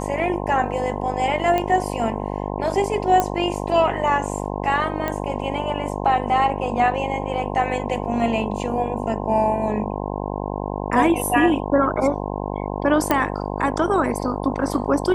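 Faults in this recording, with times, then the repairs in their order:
mains buzz 50 Hz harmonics 21 −27 dBFS
0:01.58: click −10 dBFS
0:03.20: click −6 dBFS
0:05.08: click −11 dBFS
0:13.11: click −5 dBFS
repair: click removal
hum removal 50 Hz, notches 21

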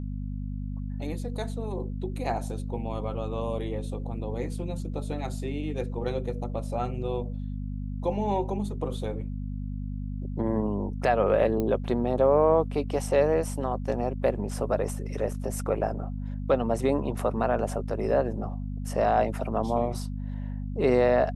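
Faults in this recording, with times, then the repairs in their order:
mains hum 50 Hz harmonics 5 −33 dBFS
0:11.60: click −17 dBFS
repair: click removal
hum removal 50 Hz, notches 5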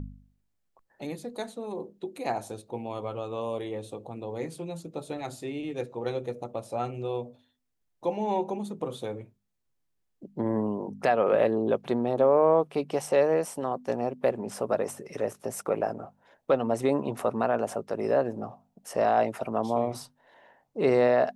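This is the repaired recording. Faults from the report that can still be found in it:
none of them is left

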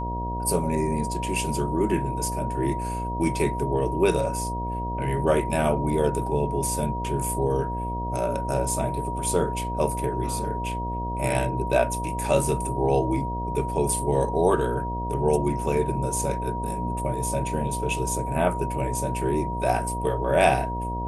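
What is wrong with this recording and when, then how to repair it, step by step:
mains buzz 60 Hz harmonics 12 −31 dBFS
whistle 950 Hz −30 dBFS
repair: hum removal 60 Hz, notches 12
notch filter 950 Hz, Q 30

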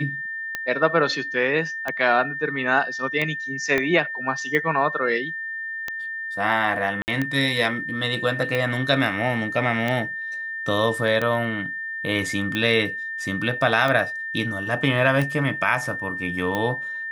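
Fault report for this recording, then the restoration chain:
scratch tick 45 rpm −12 dBFS
whistle 1,800 Hz −28 dBFS
0:03.78: click −9 dBFS
0:07.02–0:07.08: drop-out 59 ms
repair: click removal
notch filter 1,800 Hz, Q 30
repair the gap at 0:07.02, 59 ms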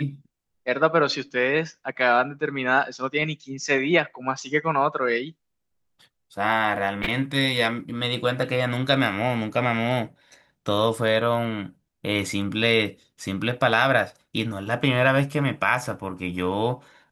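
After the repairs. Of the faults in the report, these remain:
0:03.78: click

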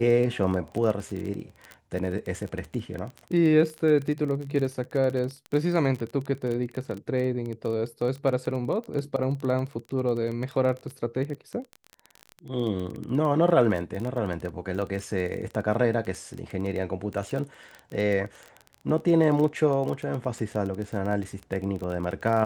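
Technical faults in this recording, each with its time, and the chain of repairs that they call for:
surface crackle 23 per second −30 dBFS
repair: click removal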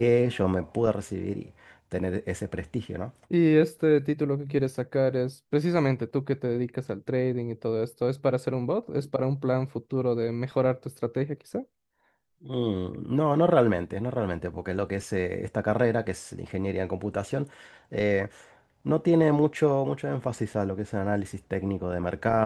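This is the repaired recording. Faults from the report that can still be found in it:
none of them is left

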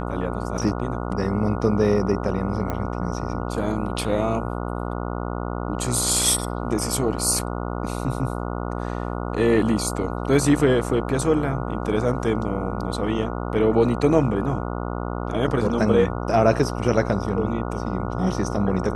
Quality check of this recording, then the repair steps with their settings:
mains buzz 60 Hz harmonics 24 −28 dBFS
0:02.70: click −14 dBFS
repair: click removal
hum removal 60 Hz, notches 24

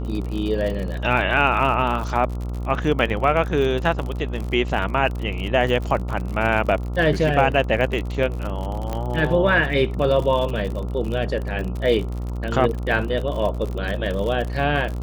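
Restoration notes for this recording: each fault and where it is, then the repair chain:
mains buzz 60 Hz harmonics 23 −27 dBFS
surface crackle 51 per second −27 dBFS
0:08.93: click −14 dBFS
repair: click removal
hum removal 60 Hz, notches 23

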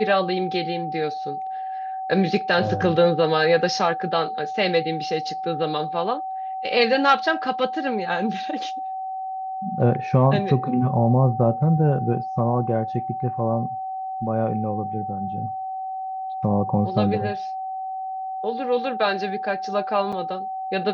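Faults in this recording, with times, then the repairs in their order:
whistle 760 Hz −27 dBFS
0:20.12–0:20.13: drop-out 5.8 ms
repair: notch filter 760 Hz, Q 30
repair the gap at 0:20.12, 5.8 ms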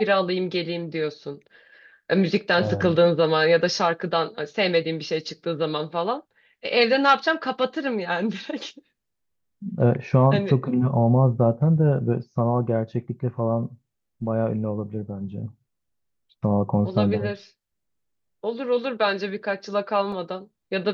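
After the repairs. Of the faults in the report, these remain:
none of them is left

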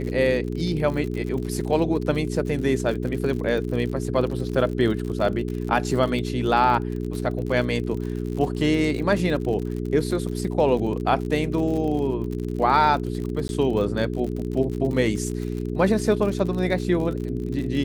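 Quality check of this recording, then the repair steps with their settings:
surface crackle 58 per second −30 dBFS
mains hum 60 Hz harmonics 7 −28 dBFS
0:13.48–0:13.49: drop-out 11 ms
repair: click removal
hum removal 60 Hz, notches 7
repair the gap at 0:13.48, 11 ms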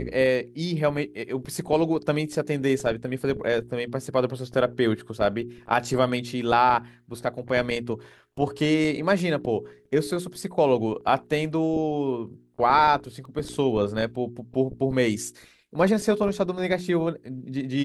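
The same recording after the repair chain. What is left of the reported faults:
none of them is left

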